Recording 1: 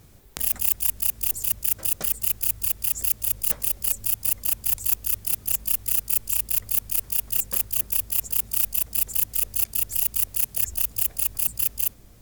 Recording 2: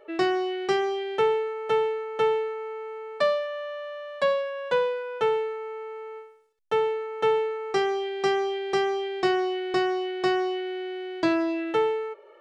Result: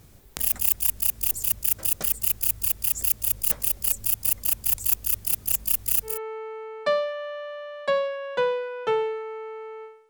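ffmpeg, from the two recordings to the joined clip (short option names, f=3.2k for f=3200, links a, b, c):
-filter_complex "[0:a]apad=whole_dur=10.09,atrim=end=10.09,atrim=end=6.2,asetpts=PTS-STARTPTS[a];[1:a]atrim=start=2.36:end=6.43,asetpts=PTS-STARTPTS[b];[a][b]acrossfade=d=0.18:c1=tri:c2=tri"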